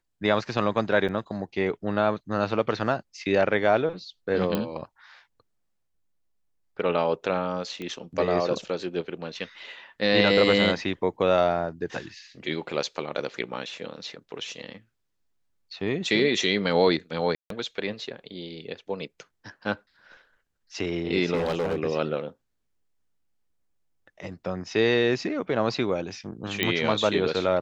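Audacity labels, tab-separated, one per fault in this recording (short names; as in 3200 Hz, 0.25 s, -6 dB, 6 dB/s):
1.080000	1.090000	gap 7.2 ms
4.550000	4.550000	pop -13 dBFS
7.820000	7.820000	pop -22 dBFS
17.350000	17.500000	gap 0.153 s
21.340000	21.790000	clipped -22 dBFS
26.630000	26.630000	pop -9 dBFS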